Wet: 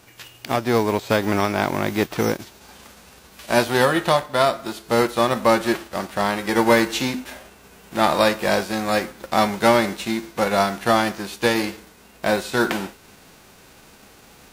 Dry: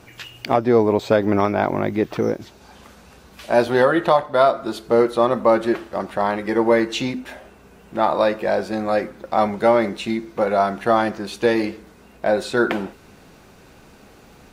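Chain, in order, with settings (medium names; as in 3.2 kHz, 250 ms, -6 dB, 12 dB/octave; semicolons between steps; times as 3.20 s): formants flattened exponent 0.6; gain riding 2 s; trim -2 dB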